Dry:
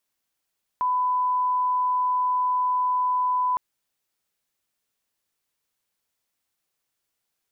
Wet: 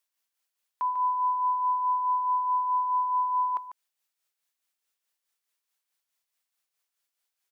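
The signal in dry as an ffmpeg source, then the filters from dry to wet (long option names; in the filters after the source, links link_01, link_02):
-f lavfi -i "sine=frequency=1000:duration=2.76:sample_rate=44100,volume=-1.94dB"
-af "highpass=frequency=920:poles=1,tremolo=f=4.7:d=0.56,aecho=1:1:146:0.299"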